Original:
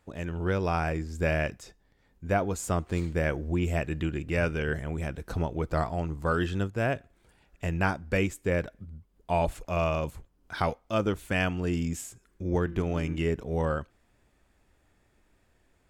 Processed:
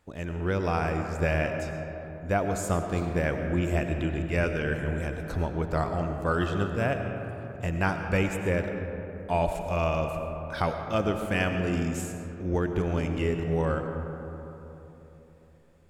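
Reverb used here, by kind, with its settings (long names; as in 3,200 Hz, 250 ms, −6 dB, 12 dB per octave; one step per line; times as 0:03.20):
comb and all-pass reverb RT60 3.6 s, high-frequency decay 0.35×, pre-delay 60 ms, DRR 5 dB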